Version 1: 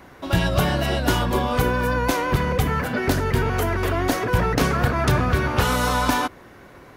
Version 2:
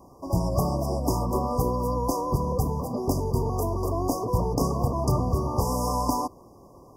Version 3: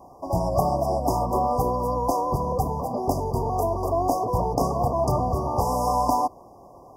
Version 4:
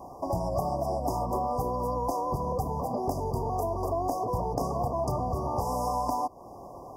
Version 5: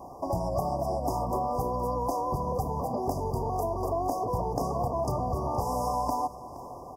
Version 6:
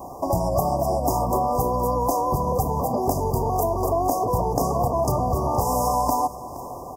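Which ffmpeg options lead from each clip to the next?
-af "afftfilt=real='re*(1-between(b*sr/4096,1200,4700))':imag='im*(1-between(b*sr/4096,1200,4700))':win_size=4096:overlap=0.75,volume=0.631"
-af "equalizer=f=730:t=o:w=0.78:g=12,volume=0.794"
-af "acompressor=threshold=0.0224:ratio=3,volume=1.5"
-af "aecho=1:1:469|938|1407|1876:0.15|0.0703|0.0331|0.0155"
-af "aexciter=amount=2.9:drive=1.4:freq=6500,volume=2.24"

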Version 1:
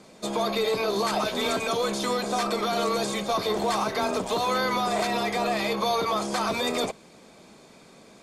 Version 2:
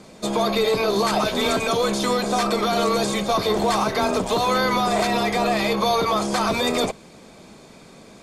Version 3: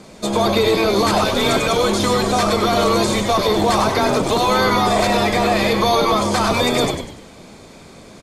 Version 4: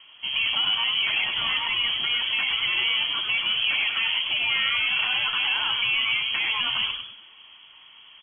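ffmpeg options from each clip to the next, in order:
-af "lowshelf=f=130:g=8,volume=1.68"
-filter_complex "[0:a]asplit=6[s0][s1][s2][s3][s4][s5];[s1]adelay=98,afreqshift=-110,volume=0.473[s6];[s2]adelay=196,afreqshift=-220,volume=0.188[s7];[s3]adelay=294,afreqshift=-330,volume=0.0759[s8];[s4]adelay=392,afreqshift=-440,volume=0.0302[s9];[s5]adelay=490,afreqshift=-550,volume=0.0122[s10];[s0][s6][s7][s8][s9][s10]amix=inputs=6:normalize=0,volume=1.5"
-af "lowpass=f=2900:t=q:w=0.5098,lowpass=f=2900:t=q:w=0.6013,lowpass=f=2900:t=q:w=0.9,lowpass=f=2900:t=q:w=2.563,afreqshift=-3400,volume=0.398"

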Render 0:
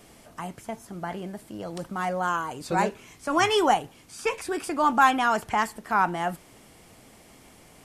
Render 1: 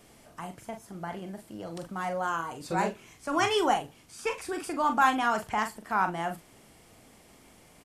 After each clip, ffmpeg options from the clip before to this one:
-filter_complex "[0:a]asplit=2[s0][s1];[s1]adelay=42,volume=0.398[s2];[s0][s2]amix=inputs=2:normalize=0,volume=0.596"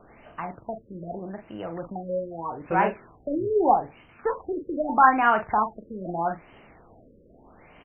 -filter_complex "[0:a]equalizer=f=160:t=o:w=2.8:g=-5.5,acrossover=split=2600[s0][s1];[s1]acompressor=threshold=0.00282:ratio=4:attack=1:release=60[s2];[s0][s2]amix=inputs=2:normalize=0,afftfilt=real='re*lt(b*sr/1024,560*pow(3200/560,0.5+0.5*sin(2*PI*0.8*pts/sr)))':imag='im*lt(b*sr/1024,560*pow(3200/560,0.5+0.5*sin(2*PI*0.8*pts/sr)))':win_size=1024:overlap=0.75,volume=2.51"

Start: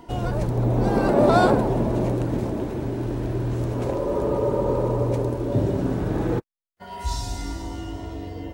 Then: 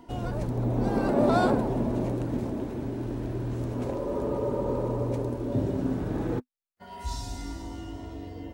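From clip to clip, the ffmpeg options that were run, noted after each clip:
-af "equalizer=f=250:t=o:w=0.25:g=7,volume=0.473"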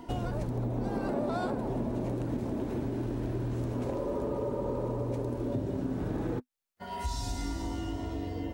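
-af "acompressor=threshold=0.02:ratio=6,volume=1.68"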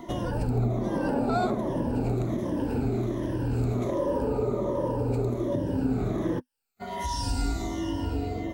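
-af "afftfilt=real='re*pow(10,12/40*sin(2*PI*(1.2*log(max(b,1)*sr/1024/100)/log(2)-(-1.3)*(pts-256)/sr)))':imag='im*pow(10,12/40*sin(2*PI*(1.2*log(max(b,1)*sr/1024/100)/log(2)-(-1.3)*(pts-256)/sr)))':win_size=1024:overlap=0.75,volume=1.5"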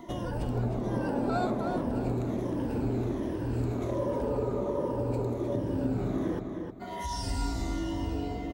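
-filter_complex "[0:a]asplit=2[s0][s1];[s1]adelay=311,lowpass=f=4400:p=1,volume=0.562,asplit=2[s2][s3];[s3]adelay=311,lowpass=f=4400:p=1,volume=0.3,asplit=2[s4][s5];[s5]adelay=311,lowpass=f=4400:p=1,volume=0.3,asplit=2[s6][s7];[s7]adelay=311,lowpass=f=4400:p=1,volume=0.3[s8];[s0][s2][s4][s6][s8]amix=inputs=5:normalize=0,volume=0.631"

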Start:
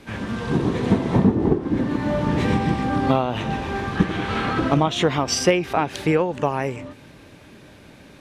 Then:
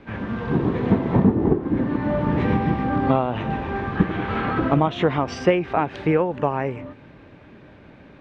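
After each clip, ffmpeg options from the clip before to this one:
-af "lowpass=2200"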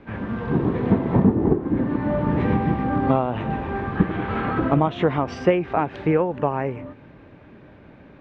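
-af "highshelf=f=3400:g=-9"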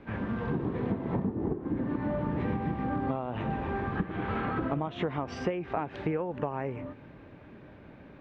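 -af "acompressor=threshold=0.0631:ratio=6,volume=0.668"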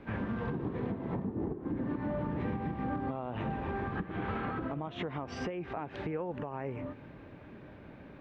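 -af "alimiter=level_in=1.26:limit=0.0631:level=0:latency=1:release=233,volume=0.794"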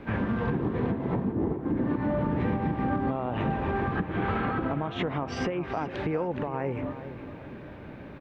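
-filter_complex "[0:a]asplit=2[s0][s1];[s1]adelay=408,lowpass=f=3400:p=1,volume=0.251,asplit=2[s2][s3];[s3]adelay=408,lowpass=f=3400:p=1,volume=0.39,asplit=2[s4][s5];[s5]adelay=408,lowpass=f=3400:p=1,volume=0.39,asplit=2[s6][s7];[s7]adelay=408,lowpass=f=3400:p=1,volume=0.39[s8];[s0][s2][s4][s6][s8]amix=inputs=5:normalize=0,volume=2.24"

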